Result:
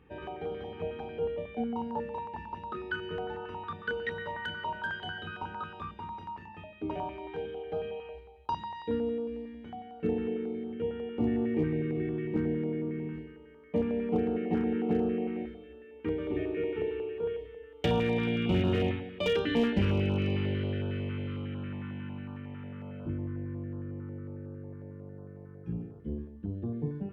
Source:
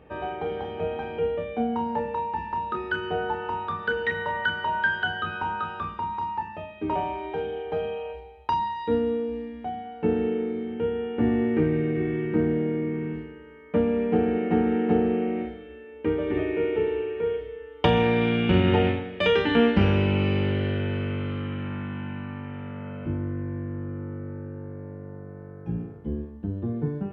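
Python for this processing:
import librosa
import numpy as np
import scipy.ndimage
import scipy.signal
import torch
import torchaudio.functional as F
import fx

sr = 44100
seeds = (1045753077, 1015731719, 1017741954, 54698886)

y = np.clip(x, -10.0 ** (-14.0 / 20.0), 10.0 ** (-14.0 / 20.0))
y = fx.filter_held_notch(y, sr, hz=11.0, low_hz=620.0, high_hz=2000.0)
y = y * 10.0 ** (-5.5 / 20.0)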